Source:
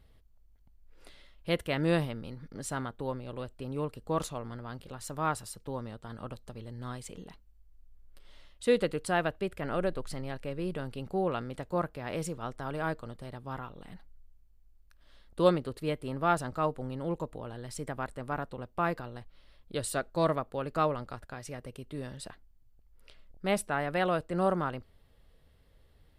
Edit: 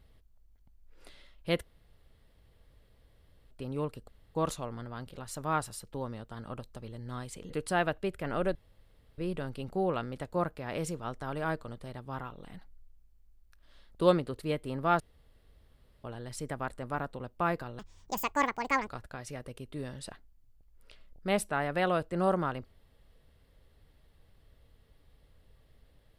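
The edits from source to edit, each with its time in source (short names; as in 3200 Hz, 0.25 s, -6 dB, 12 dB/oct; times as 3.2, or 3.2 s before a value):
1.63–3.51 room tone
4.08 insert room tone 0.27 s
7.23–8.88 cut
9.93–10.56 room tone
16.38–17.42 room tone
19.17–21.06 speed 174%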